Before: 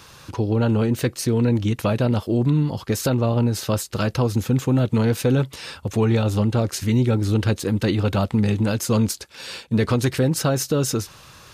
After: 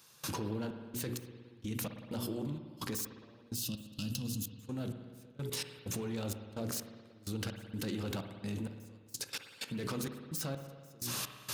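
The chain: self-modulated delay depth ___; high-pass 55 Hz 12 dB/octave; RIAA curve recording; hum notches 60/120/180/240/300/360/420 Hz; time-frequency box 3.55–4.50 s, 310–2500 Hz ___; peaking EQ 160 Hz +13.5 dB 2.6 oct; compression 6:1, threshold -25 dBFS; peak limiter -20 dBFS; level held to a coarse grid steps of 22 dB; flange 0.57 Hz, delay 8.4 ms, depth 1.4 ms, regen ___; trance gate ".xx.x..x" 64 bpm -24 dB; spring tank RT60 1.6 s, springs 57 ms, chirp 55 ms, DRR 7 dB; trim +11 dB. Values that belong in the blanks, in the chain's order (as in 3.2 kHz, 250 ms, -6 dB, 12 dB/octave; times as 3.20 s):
0.054 ms, -17 dB, -85%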